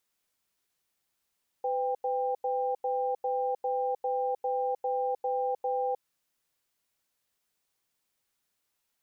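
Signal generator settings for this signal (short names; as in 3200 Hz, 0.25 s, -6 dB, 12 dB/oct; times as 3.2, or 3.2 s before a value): cadence 504 Hz, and 795 Hz, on 0.31 s, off 0.09 s, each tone -29.5 dBFS 4.34 s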